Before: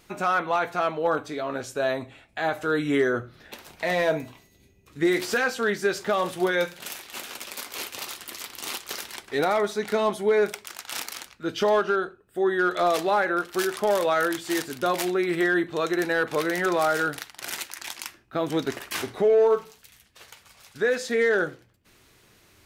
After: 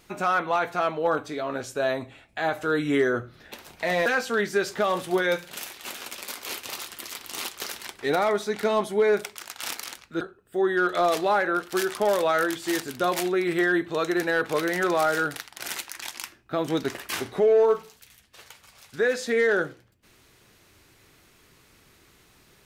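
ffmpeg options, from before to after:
-filter_complex "[0:a]asplit=3[a][b][c];[a]atrim=end=4.062[d];[b]atrim=start=5.348:end=11.502[e];[c]atrim=start=12.028[f];[d][e]acrossfade=d=0.004:c1=hsin:c2=hsin[g];[g][f]acrossfade=d=0.004:c1=hsin:c2=hsin"

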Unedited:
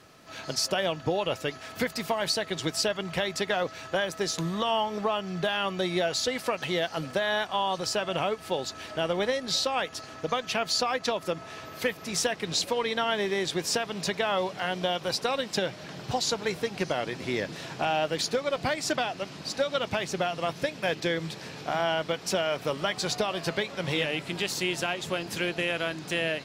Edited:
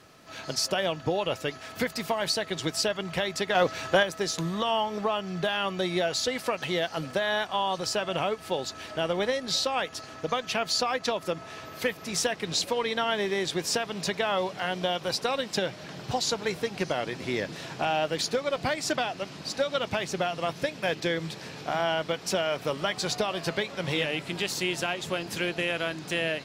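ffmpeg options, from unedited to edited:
-filter_complex "[0:a]asplit=3[a][b][c];[a]atrim=end=3.552[d];[b]atrim=start=3.548:end=4.032,asetpts=PTS-STARTPTS,volume=6dB[e];[c]atrim=start=4.028[f];[d][e]acrossfade=d=0.004:c1=hsin:c2=hsin[g];[g][f]acrossfade=d=0.004:c1=hsin:c2=hsin"

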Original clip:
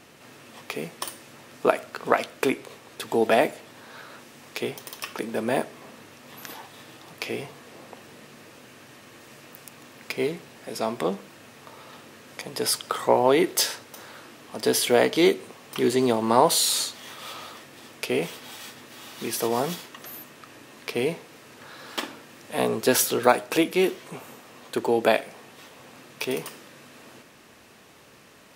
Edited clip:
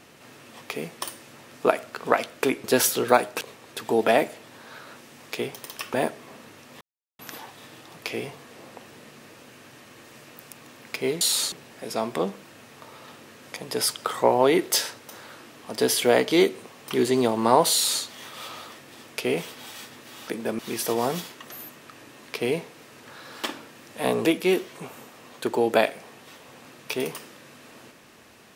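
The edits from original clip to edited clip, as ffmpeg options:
-filter_complex "[0:a]asplit=10[a][b][c][d][e][f][g][h][i][j];[a]atrim=end=2.642[k];[b]atrim=start=22.788:end=23.562[l];[c]atrim=start=2.638:end=5.172[m];[d]atrim=start=5.478:end=6.35,asetpts=PTS-STARTPTS,afade=t=out:st=0.868:d=0.004:c=hsin,apad=pad_dur=0.38[n];[e]atrim=start=6.35:end=10.372,asetpts=PTS-STARTPTS,afade=t=in:d=0.004:c=hsin[o];[f]atrim=start=16.578:end=16.892[p];[g]atrim=start=10.368:end=19.132[q];[h]atrim=start=5.168:end=5.482[r];[i]atrim=start=19.128:end=22.792[s];[j]atrim=start=23.558[t];[k][l]acrossfade=d=0.004:c1=hsin:c2=hsin[u];[u][m]acrossfade=d=0.004:c1=hsin:c2=hsin[v];[n][o]concat=n=2:v=0:a=1[w];[v][w]acrossfade=d=0.004:c1=hsin:c2=hsin[x];[x][p]acrossfade=d=0.004:c1=hsin:c2=hsin[y];[y][q]acrossfade=d=0.004:c1=hsin:c2=hsin[z];[z][r]acrossfade=d=0.004:c1=hsin:c2=hsin[aa];[aa][s]acrossfade=d=0.004:c1=hsin:c2=hsin[ab];[ab][t]acrossfade=d=0.004:c1=hsin:c2=hsin"

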